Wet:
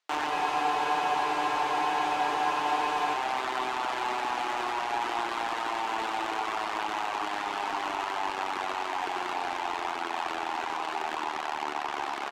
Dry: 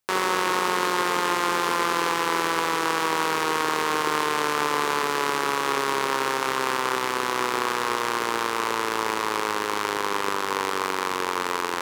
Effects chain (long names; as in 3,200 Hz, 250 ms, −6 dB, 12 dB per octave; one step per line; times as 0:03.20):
high-pass filter 690 Hz 12 dB per octave
reverb reduction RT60 1.2 s
low-pass filter 5,800 Hz 12 dB per octave
in parallel at −3 dB: brickwall limiter −19.5 dBFS, peak gain reduction 7.5 dB
on the sum: pitch shifter −3 semitones
soft clipping −22 dBFS, distortion −10 dB
on a send: single-tap delay 90 ms −7.5 dB
on the sum: wrong playback speed 25 fps video run at 24 fps
frozen spectrum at 0:00.33, 2.81 s
level −1.5 dB